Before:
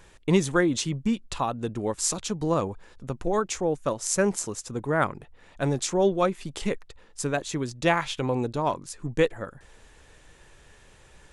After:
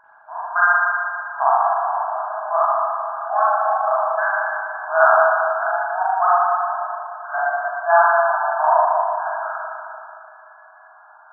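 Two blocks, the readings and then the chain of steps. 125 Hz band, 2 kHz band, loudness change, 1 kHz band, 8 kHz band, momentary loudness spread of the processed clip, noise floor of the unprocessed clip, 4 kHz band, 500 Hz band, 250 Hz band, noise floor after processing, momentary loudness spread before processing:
under -40 dB, +13.5 dB, +8.0 dB, +15.5 dB, under -40 dB, 12 LU, -55 dBFS, under -40 dB, +5.5 dB, under -40 dB, -47 dBFS, 10 LU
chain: FFT band-pass 620–1700 Hz; spring tank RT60 2.6 s, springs 37/59 ms, chirp 70 ms, DRR -10 dB; trim +5.5 dB

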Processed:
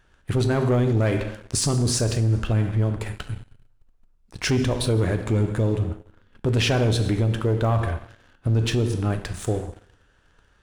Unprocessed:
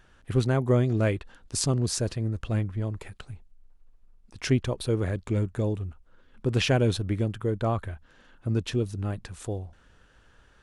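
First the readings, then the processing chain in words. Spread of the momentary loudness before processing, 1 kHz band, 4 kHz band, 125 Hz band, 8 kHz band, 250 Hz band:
15 LU, +5.0 dB, +5.5 dB, +5.5 dB, +5.5 dB, +4.0 dB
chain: plate-style reverb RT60 0.86 s, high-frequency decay 0.95×, DRR 7 dB; waveshaping leveller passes 2; peak limiter -16 dBFS, peak gain reduction 6.5 dB; trim +1 dB

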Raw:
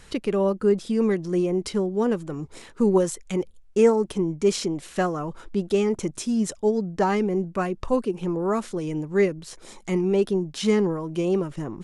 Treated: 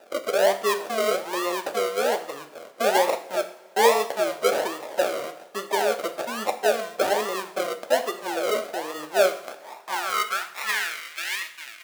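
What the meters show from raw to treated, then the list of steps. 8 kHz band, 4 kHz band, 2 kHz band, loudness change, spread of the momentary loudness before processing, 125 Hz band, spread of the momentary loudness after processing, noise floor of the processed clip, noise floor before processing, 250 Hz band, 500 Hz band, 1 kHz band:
+3.5 dB, +7.5 dB, +9.0 dB, -1.0 dB, 8 LU, under -20 dB, 10 LU, -47 dBFS, -50 dBFS, -14.0 dB, -1.0 dB, +6.5 dB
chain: treble shelf 2.9 kHz +9.5 dB; decimation with a swept rate 40×, swing 60% 1.2 Hz; high-pass sweep 600 Hz -> 2.1 kHz, 9.16–11.14 s; two-slope reverb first 0.51 s, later 3.2 s, from -22 dB, DRR 6.5 dB; trim -2.5 dB

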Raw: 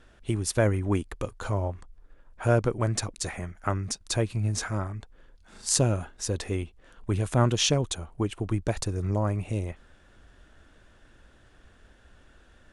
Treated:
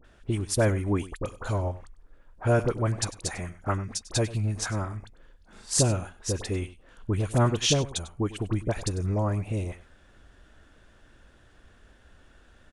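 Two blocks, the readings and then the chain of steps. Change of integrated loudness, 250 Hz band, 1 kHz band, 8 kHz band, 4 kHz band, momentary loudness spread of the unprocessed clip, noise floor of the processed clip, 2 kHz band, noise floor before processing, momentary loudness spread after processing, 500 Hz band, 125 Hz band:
0.0 dB, 0.0 dB, 0.0 dB, 0.0 dB, 0.0 dB, 12 LU, -58 dBFS, 0.0 dB, -58 dBFS, 10 LU, 0.0 dB, 0.0 dB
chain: phase dispersion highs, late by 47 ms, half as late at 1.5 kHz; on a send: delay 98 ms -17 dB

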